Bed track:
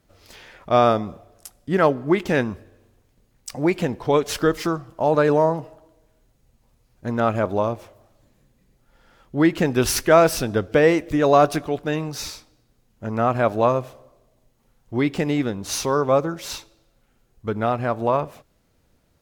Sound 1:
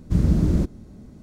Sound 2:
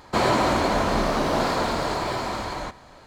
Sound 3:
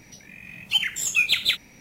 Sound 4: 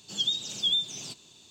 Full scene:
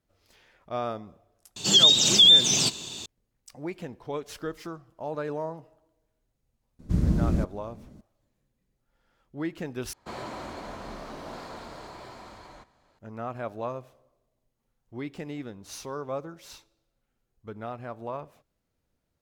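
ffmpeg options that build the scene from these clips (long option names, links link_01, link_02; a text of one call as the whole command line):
ffmpeg -i bed.wav -i cue0.wav -i cue1.wav -i cue2.wav -i cue3.wav -filter_complex "[0:a]volume=-15dB[link_01];[4:a]alimiter=level_in=24.5dB:limit=-1dB:release=50:level=0:latency=1[link_02];[link_01]asplit=2[link_03][link_04];[link_03]atrim=end=9.934[link_05];[2:a]atrim=end=3.06,asetpts=PTS-STARTPTS,volume=-17.5dB[link_06];[link_04]atrim=start=12.986[link_07];[link_02]atrim=end=1.5,asetpts=PTS-STARTPTS,volume=-8dB,afade=type=in:duration=0.004:curve=hsin,afade=type=out:start_time=1.496:duration=0.004:curve=hsin,adelay=1560[link_08];[1:a]atrim=end=1.22,asetpts=PTS-STARTPTS,volume=-5dB,afade=type=in:duration=0.004:curve=hsin,afade=type=out:start_time=1.216:duration=0.004:curve=hsin,adelay=6790[link_09];[link_05][link_06]acrossfade=duration=0.004:curve1=hsin:curve2=hsin[link_10];[link_10][link_07]acrossfade=duration=0.004:curve1=hsin:curve2=hsin[link_11];[link_11][link_08][link_09]amix=inputs=3:normalize=0" out.wav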